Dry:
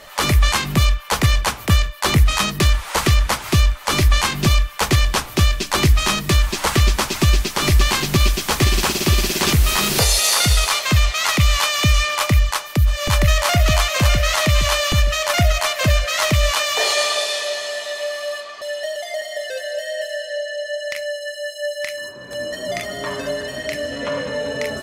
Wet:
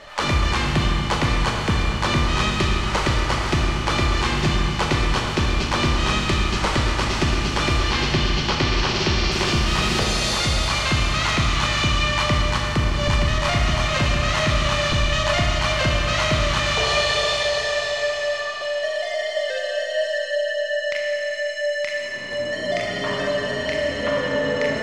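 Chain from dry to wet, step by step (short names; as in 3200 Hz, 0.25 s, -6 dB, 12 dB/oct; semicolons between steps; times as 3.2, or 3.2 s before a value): 7.79–9.32 resonant high shelf 7200 Hz -12.5 dB, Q 1.5; compressor, threshold -18 dBFS, peak gain reduction 9.5 dB; air absorption 100 m; Schroeder reverb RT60 3.8 s, combs from 26 ms, DRR -1 dB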